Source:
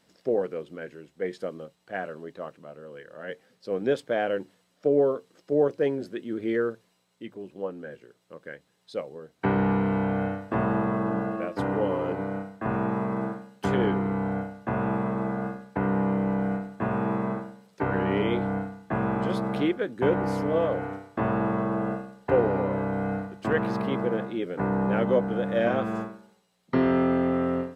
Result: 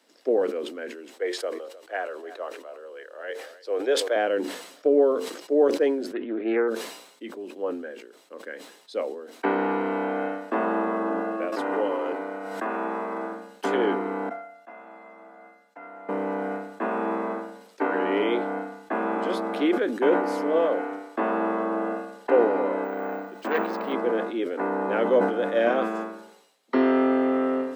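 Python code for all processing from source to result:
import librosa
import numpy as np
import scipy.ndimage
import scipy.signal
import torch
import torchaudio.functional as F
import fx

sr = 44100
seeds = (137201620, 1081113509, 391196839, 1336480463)

y = fx.chain(x, sr, fx.highpass(hz=380.0, slope=24),
    fx.echo_single(ms=308, db=-22.0), at=(1.13, 4.16))
y = fx.chain(y, sr, fx.lowpass(hz=2700.0, slope=24),
    fx.doppler_dist(depth_ms=0.19), at=(6.13, 6.68))
y = fx.chain(y, sr, fx.low_shelf(hz=430.0, db=-6.0),
    fx.pre_swell(db_per_s=26.0), at=(11.52, 13.32))
y = fx.chain(y, sr, fx.low_shelf(hz=230.0, db=-11.5),
    fx.notch(hz=410.0, q=6.0),
    fx.comb_fb(f0_hz=690.0, decay_s=0.17, harmonics='all', damping=0.0, mix_pct=90), at=(14.29, 16.09))
y = fx.chain(y, sr, fx.resample_bad(factor=2, down='filtered', up='hold'),
    fx.transformer_sat(knee_hz=960.0), at=(22.84, 23.93))
y = scipy.signal.sosfilt(scipy.signal.butter(8, 240.0, 'highpass', fs=sr, output='sos'), y)
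y = fx.sustainer(y, sr, db_per_s=70.0)
y = y * librosa.db_to_amplitude(2.5)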